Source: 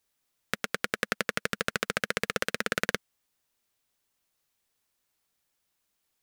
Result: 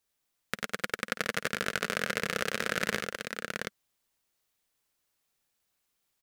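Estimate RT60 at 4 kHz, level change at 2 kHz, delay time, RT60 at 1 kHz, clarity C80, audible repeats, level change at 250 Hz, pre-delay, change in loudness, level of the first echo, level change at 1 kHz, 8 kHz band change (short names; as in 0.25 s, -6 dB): none, -0.5 dB, 52 ms, none, none, 4, -0.5 dB, none, -1.5 dB, -15.0 dB, -0.5 dB, -0.5 dB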